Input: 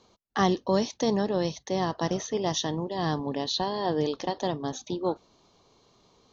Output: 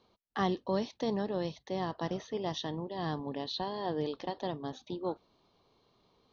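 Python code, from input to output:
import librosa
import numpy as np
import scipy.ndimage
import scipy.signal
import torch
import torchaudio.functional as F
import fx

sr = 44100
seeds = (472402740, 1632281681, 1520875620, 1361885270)

y = scipy.signal.sosfilt(scipy.signal.butter(4, 4600.0, 'lowpass', fs=sr, output='sos'), x)
y = F.gain(torch.from_numpy(y), -7.0).numpy()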